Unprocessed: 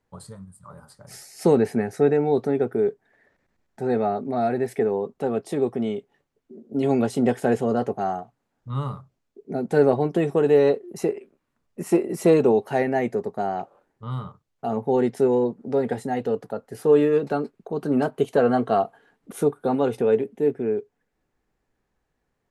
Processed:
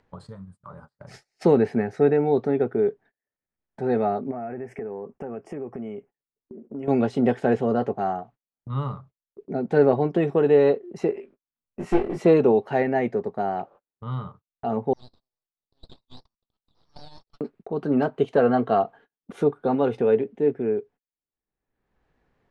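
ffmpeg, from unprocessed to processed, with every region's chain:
-filter_complex "[0:a]asettb=1/sr,asplit=3[a][b][c];[a]atrim=end=4.314[d];[b]atrim=start=4.31:end=6.88,asetpts=PTS-STARTPTS,afade=t=in:d=0.004:c=qsin,afade=t=out:st=2.566:d=0.004:c=qsin,acompressor=threshold=-31dB:ratio=4:attack=3.2:release=140:knee=1:detection=peak,asuperstop=centerf=3900:order=4:qfactor=1.4[e];[c]atrim=start=6.876[f];[d][e]acrossfade=d=0.004:c1=hsin:c2=qsin[g];[g][f]acrossfade=d=0.004:c1=qsin:c2=hsin,asettb=1/sr,asplit=3[h][i][j];[h]atrim=end=11.144[k];[i]atrim=start=11.14:end=12.22,asetpts=PTS-STARTPTS,afade=t=in:d=0.004:c=qsin,afade=t=out:st=1.076:d=0.004:c=qsin,aeval=exprs='clip(val(0),-1,0.0355)':c=same,asplit=2[l][m];[m]adelay=20,volume=-3dB[n];[l][n]amix=inputs=2:normalize=0,atrim=end_sample=47628[o];[j]atrim=start=12.216[p];[k][o]acrossfade=d=0.004:c1=hsin:c2=qsin[q];[q][p]acrossfade=d=0.004:c1=qsin:c2=hsin,asettb=1/sr,asplit=3[r][s][t];[r]atrim=end=14.934[u];[s]atrim=start=14.93:end=17.41,asetpts=PTS-STARTPTS,afade=t=in:d=0.004:c=qsin,afade=t=out:st=2.476:d=0.004:c=qsin,acompressor=mode=upward:threshold=-27dB:ratio=2.5:attack=3.2:release=140:knee=2.83:detection=peak,asuperpass=centerf=2300:order=8:qfactor=1.9,aeval=exprs='abs(val(0))':c=same[v];[t]atrim=start=17.406[w];[u][v]acrossfade=d=0.004:c1=hsin:c2=qsin[x];[x][w]acrossfade=d=0.004:c1=qsin:c2=hsin,lowpass=3.6k,agate=range=-35dB:threshold=-47dB:ratio=16:detection=peak,acompressor=mode=upward:threshold=-37dB:ratio=2.5"

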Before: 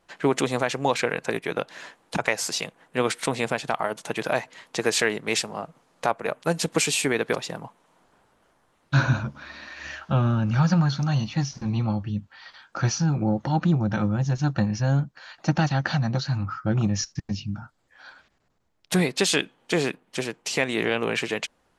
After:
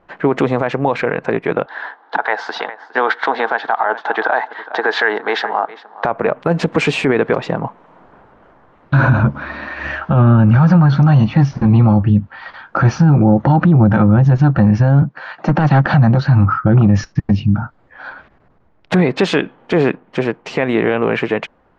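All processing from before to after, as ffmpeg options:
-filter_complex "[0:a]asettb=1/sr,asplit=3[a][b][c];[a]atrim=end=1.664[d];[b]atrim=start=1.66:end=6.05,asetpts=PTS-STARTPTS,afade=t=in:d=0.004:c=qsin,afade=t=out:st=4.386:d=0.004:c=qsin,highpass=f=350:w=0.5412,highpass=f=350:w=1.3066,equalizer=f=360:t=q:w=4:g=-7,equalizer=f=550:t=q:w=4:g=-9,equalizer=f=840:t=q:w=4:g=7,equalizer=f=1.6k:t=q:w=4:g=8,equalizer=f=2.5k:t=q:w=4:g=-10,equalizer=f=3.7k:t=q:w=4:g=5,lowpass=f=5.1k:w=0.5412,lowpass=f=5.1k:w=1.3066,aecho=1:1:410:0.0944,atrim=end_sample=193599[e];[c]atrim=start=6.046[f];[d][e]acrossfade=d=0.004:c1=hsin:c2=qsin[g];[g][f]acrossfade=d=0.004:c1=qsin:c2=hsin,asettb=1/sr,asplit=3[h][i][j];[h]atrim=end=15.024[k];[i]atrim=start=15.02:end=15.94,asetpts=PTS-STARTPTS,afade=t=in:d=0.004:c=qsin,afade=t=out:st=0.916:d=0.004:c=qsin,highpass=f=120:w=0.5412,highpass=f=120:w=1.3066,aeval=exprs='clip(val(0),-1,0.106)':c=same[l];[j]atrim=start=15.936[m];[k][l]acrossfade=d=0.004:c1=hsin:c2=qsin[n];[n][m]acrossfade=d=0.004:c1=qsin:c2=hsin,lowpass=1.6k,dynaudnorm=f=220:g=21:m=5.5dB,alimiter=level_in=15.5dB:limit=-1dB:release=50:level=0:latency=1,volume=-3dB"

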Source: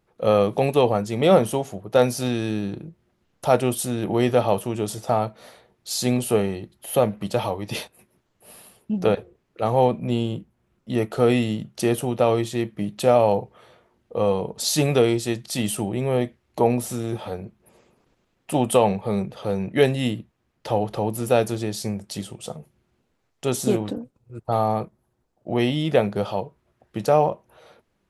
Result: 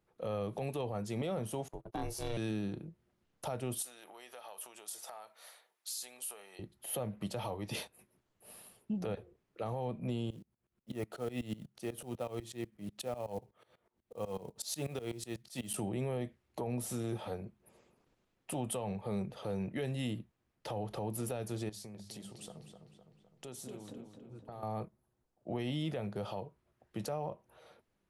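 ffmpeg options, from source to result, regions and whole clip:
-filter_complex "[0:a]asettb=1/sr,asplit=3[a][b][c];[a]atrim=end=1.684[d];[b]atrim=start=1.68:end=2.37,asetpts=PTS-STARTPTS,afade=t=in:d=0.004:c=qsin,afade=t=out:st=0.686:d=0.004:c=qsin,agate=range=-22dB:threshold=-39dB:ratio=16:release=100:detection=peak,aeval=exprs='val(0)*sin(2*PI*230*n/s)':c=same[e];[c]atrim=start=2.366[f];[d][e]acrossfade=d=0.004:c1=hsin:c2=qsin[g];[g][f]acrossfade=d=0.004:c1=qsin:c2=hsin,asettb=1/sr,asplit=3[h][i][j];[h]atrim=end=3.824[k];[i]atrim=start=3.82:end=6.59,asetpts=PTS-STARTPTS,afade=t=in:d=0.004:c=qsin,afade=t=out:st=2.766:d=0.004:c=qsin,highshelf=f=8.4k:g=10.5,acompressor=threshold=-29dB:ratio=8:attack=3.2:release=140:knee=1:detection=peak,highpass=880[l];[j]atrim=start=6.586[m];[k][l]acrossfade=d=0.004:c1=hsin:c2=qsin[n];[n][m]acrossfade=d=0.004:c1=qsin:c2=hsin,asettb=1/sr,asplit=3[o][p][q];[o]atrim=end=10.304[r];[p]atrim=start=10.3:end=15.74,asetpts=PTS-STARTPTS,afade=t=in:d=0.004:c=qsin,afade=t=out:st=5.436:d=0.004:c=qsin,acrusher=bits=6:mode=log:mix=0:aa=0.000001,aeval=exprs='val(0)*pow(10,-21*if(lt(mod(-8.1*n/s,1),2*abs(-8.1)/1000),1-mod(-8.1*n/s,1)/(2*abs(-8.1)/1000),(mod(-8.1*n/s,1)-2*abs(-8.1)/1000)/(1-2*abs(-8.1)/1000))/20)':c=same[s];[q]atrim=start=15.736[t];[r][s]acrossfade=d=0.004:c1=hsin:c2=qsin[u];[u][t]acrossfade=d=0.004:c1=qsin:c2=hsin,asettb=1/sr,asplit=3[v][w][x];[v]atrim=end=21.694[y];[w]atrim=start=21.69:end=24.63,asetpts=PTS-STARTPTS,afade=t=in:d=0.004:c=qsin,afade=t=out:st=2.936:d=0.004:c=qsin,bandreject=f=50:t=h:w=6,bandreject=f=100:t=h:w=6,bandreject=f=150:t=h:w=6,bandreject=f=200:t=h:w=6,acompressor=threshold=-37dB:ratio=4:attack=3.2:release=140:knee=1:detection=peak,asplit=2[z][aa];[aa]adelay=255,lowpass=f=4k:p=1,volume=-7dB,asplit=2[ab][ac];[ac]adelay=255,lowpass=f=4k:p=1,volume=0.55,asplit=2[ad][ae];[ae]adelay=255,lowpass=f=4k:p=1,volume=0.55,asplit=2[af][ag];[ag]adelay=255,lowpass=f=4k:p=1,volume=0.55,asplit=2[ah][ai];[ai]adelay=255,lowpass=f=4k:p=1,volume=0.55,asplit=2[aj][ak];[ak]adelay=255,lowpass=f=4k:p=1,volume=0.55,asplit=2[al][am];[am]adelay=255,lowpass=f=4k:p=1,volume=0.55[an];[z][ab][ad][af][ah][aj][al][an]amix=inputs=8:normalize=0,atrim=end_sample=129654[ao];[x]atrim=start=24.626[ap];[y][ao]acrossfade=d=0.004:c1=hsin:c2=qsin[aq];[aq][ap]acrossfade=d=0.004:c1=qsin:c2=hsin,acrossover=split=130[ar][as];[as]acompressor=threshold=-23dB:ratio=5[at];[ar][at]amix=inputs=2:normalize=0,alimiter=limit=-19dB:level=0:latency=1:release=32,equalizer=f=10k:t=o:w=0.32:g=3,volume=-9dB"

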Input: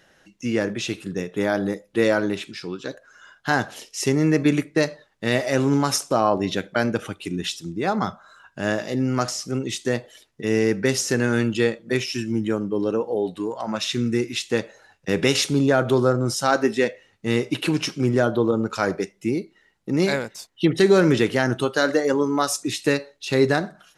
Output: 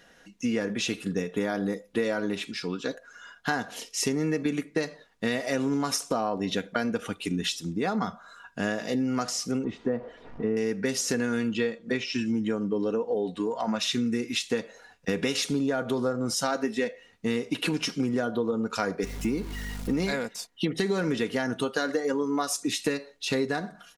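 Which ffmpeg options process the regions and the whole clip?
-filter_complex "[0:a]asettb=1/sr,asplit=3[a][b][c];[a]atrim=end=9.644[d];[b]atrim=start=9.64:end=10.57,asetpts=PTS-STARTPTS,afade=t=in:d=0.004:c=qsin,afade=t=out:st=0.926:d=0.004:c=qsin,aeval=exprs='val(0)+0.5*0.015*sgn(val(0))':c=same,lowpass=1.1k[e];[c]atrim=start=10.566[f];[d][e]acrossfade=d=0.004:c1=hsin:c2=qsin[g];[g][f]acrossfade=d=0.004:c1=qsin:c2=hsin,asettb=1/sr,asplit=3[h][i][j];[h]atrim=end=11.514[k];[i]atrim=start=11.51:end=13.79,asetpts=PTS-STARTPTS,afade=t=in:d=0.004:c=qsin,afade=t=out:st=2.276:d=0.004:c=qsin,lowpass=f=9k:w=0.5412,lowpass=f=9k:w=1.3066,acrossover=split=5200[l][m];[m]acompressor=threshold=-52dB:ratio=4:attack=1:release=60[n];[l][n]amix=inputs=2:normalize=0[o];[j]atrim=start=13.786[p];[k][o]acrossfade=d=0.004:c1=hsin:c2=qsin[q];[q][p]acrossfade=d=0.004:c1=qsin:c2=hsin,asettb=1/sr,asplit=3[r][s][t];[r]atrim=end=19.034[u];[s]atrim=start=19.03:end=20.11,asetpts=PTS-STARTPTS,afade=t=in:d=0.004:c=qsin,afade=t=out:st=1.076:d=0.004:c=qsin,aeval=exprs='val(0)+0.5*0.0141*sgn(val(0))':c=same,aeval=exprs='val(0)+0.0178*(sin(2*PI*50*n/s)+sin(2*PI*2*50*n/s)/2+sin(2*PI*3*50*n/s)/3+sin(2*PI*4*50*n/s)/4+sin(2*PI*5*50*n/s)/5)':c=same[v];[t]atrim=start=20.106[w];[u][v]acrossfade=d=0.004:c1=hsin:c2=qsin[x];[x][w]acrossfade=d=0.004:c1=qsin:c2=hsin,aecho=1:1:4.2:0.48,acompressor=threshold=-24dB:ratio=6"

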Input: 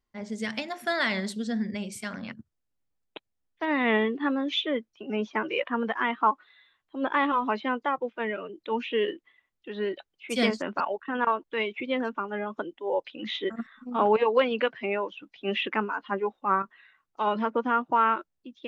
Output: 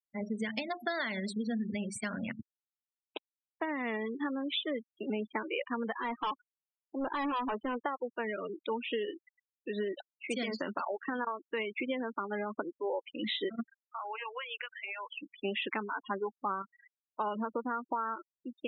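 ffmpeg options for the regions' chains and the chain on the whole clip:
-filter_complex "[0:a]asettb=1/sr,asplit=3[a][b][c];[a]atrim=end=5.974[d];[b]atrim=start=5.97:end=7.81,asetpts=PTS-STARTPTS,afade=t=in:d=0.004:c=qsin,afade=t=out:st=1.836:d=0.004:c=qsin,highpass=260,equalizer=f=3.6k:t=o:w=1.8:g=-13.5,volume=29.5dB,asoftclip=hard,volume=-29.5dB[e];[c]atrim=start=7.806[f];[d][e]acrossfade=d=0.004:c1=hsin:c2=qsin[g];[g][f]acrossfade=d=0.004:c1=qsin:c2=hsin,asettb=1/sr,asplit=3[h][i][j];[h]atrim=end=10.344[k];[i]atrim=start=10.34:end=11.12,asetpts=PTS-STARTPTS,afade=t=in:d=0.004:c=qsin,afade=t=out:st=0.776:d=0.004:c=qsin,lowpass=f=8.5k:w=0.5412,lowpass=f=8.5k:w=1.3066,acompressor=threshold=-26dB:ratio=12:attack=3.2:release=140:knee=1:detection=peak,adynamicequalizer=threshold=0.00631:dfrequency=1500:dqfactor=0.7:tfrequency=1500:tqfactor=0.7:attack=5:release=100:ratio=0.375:range=2:mode=boostabove:tftype=highshelf[l];[j]atrim=start=11.116[m];[k][l]acrossfade=d=0.004:c1=hsin:c2=qsin[n];[n][m]acrossfade=d=0.004:c1=qsin:c2=hsin,asettb=1/sr,asplit=3[o][p][q];[o]atrim=end=13.744[r];[p]atrim=start=13.74:end=15.14,asetpts=PTS-STARTPTS,afade=t=in:d=0.004:c=qsin,afade=t=out:st=1.396:d=0.004:c=qsin,highpass=1.5k,acompressor=threshold=-36dB:ratio=12:attack=3.2:release=140:knee=1:detection=peak[s];[q]atrim=start=15.136[t];[r][s]acrossfade=d=0.004:c1=hsin:c2=qsin[u];[u][t]acrossfade=d=0.004:c1=qsin:c2=hsin,acompressor=threshold=-32dB:ratio=12,afftfilt=real='re*gte(hypot(re,im),0.0126)':imag='im*gte(hypot(re,im),0.0126)':win_size=1024:overlap=0.75,volume=1.5dB"

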